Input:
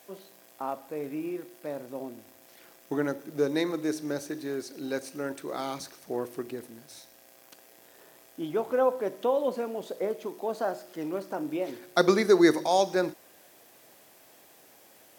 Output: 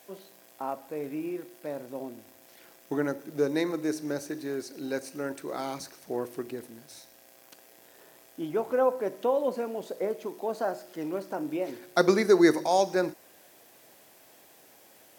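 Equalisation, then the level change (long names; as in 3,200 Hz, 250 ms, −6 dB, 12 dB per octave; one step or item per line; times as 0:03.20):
notch filter 1,200 Hz, Q 25
dynamic equaliser 3,400 Hz, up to −6 dB, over −58 dBFS, Q 4.3
0.0 dB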